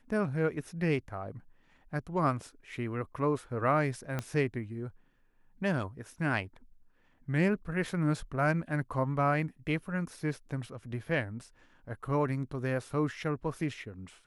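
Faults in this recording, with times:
4.19 pop -19 dBFS

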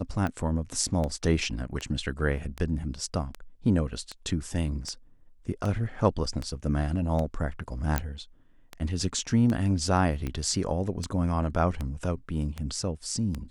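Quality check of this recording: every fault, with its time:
tick 78 rpm -19 dBFS
7.98 pop -10 dBFS

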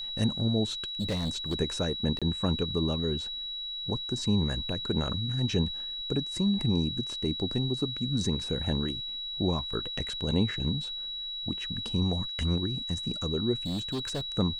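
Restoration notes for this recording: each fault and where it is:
tone 3900 Hz -34 dBFS
1–1.54 clipped -26 dBFS
2.19–2.22 gap 26 ms
13.66–14.21 clipped -28.5 dBFS

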